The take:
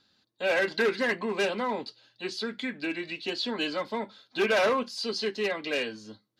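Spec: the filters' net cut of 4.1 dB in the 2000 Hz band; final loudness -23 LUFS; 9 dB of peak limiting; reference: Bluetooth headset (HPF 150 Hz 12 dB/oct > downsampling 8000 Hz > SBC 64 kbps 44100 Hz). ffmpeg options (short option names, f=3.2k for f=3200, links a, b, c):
-af "equalizer=f=2k:t=o:g=-5.5,alimiter=level_in=2.5dB:limit=-24dB:level=0:latency=1,volume=-2.5dB,highpass=150,aresample=8000,aresample=44100,volume=13dB" -ar 44100 -c:a sbc -b:a 64k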